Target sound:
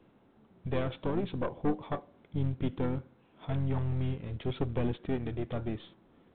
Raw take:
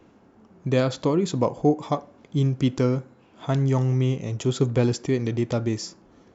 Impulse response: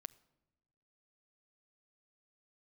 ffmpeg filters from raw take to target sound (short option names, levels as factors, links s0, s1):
-filter_complex "[0:a]aeval=exprs='(tanh(7.94*val(0)+0.65)-tanh(0.65))/7.94':c=same,asplit=2[s0][s1];[s1]asetrate=29433,aresample=44100,atempo=1.49831,volume=0.398[s2];[s0][s2]amix=inputs=2:normalize=0,volume=0.501" -ar 8000 -c:a pcm_mulaw